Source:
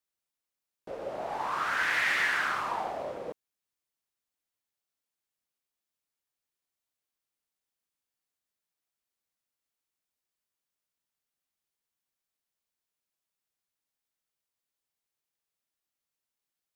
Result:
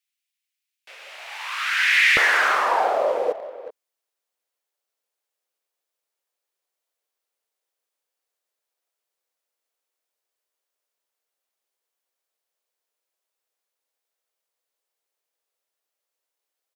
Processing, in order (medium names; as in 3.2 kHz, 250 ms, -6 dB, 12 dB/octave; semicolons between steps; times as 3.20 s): waveshaping leveller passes 1; resonant high-pass 2.4 kHz, resonance Q 2.1, from 2.17 s 490 Hz; speakerphone echo 380 ms, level -13 dB; trim +6 dB